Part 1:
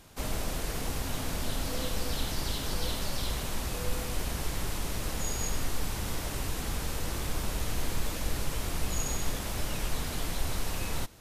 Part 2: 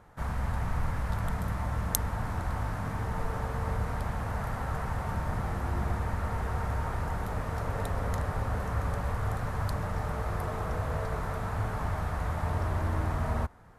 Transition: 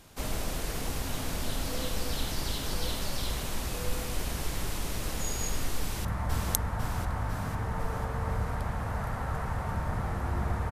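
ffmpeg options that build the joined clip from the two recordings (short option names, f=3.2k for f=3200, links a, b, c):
-filter_complex "[0:a]apad=whole_dur=10.71,atrim=end=10.71,atrim=end=6.052[a];[1:a]atrim=start=1.448:end=6.11[b];[a][b]acrossfade=d=0.004:c1=hsin:c2=hsin,asplit=2[c][d];[d]afade=t=in:st=5.79:d=0.01,afade=t=out:st=6.05:d=0.01,aecho=0:1:500|1000|1500|2000|2500|3000|3500|4000|4500:0.794328|0.476597|0.285958|0.171575|0.102945|0.061767|0.0370602|0.0222361|0.0133417[e];[c][e]amix=inputs=2:normalize=0"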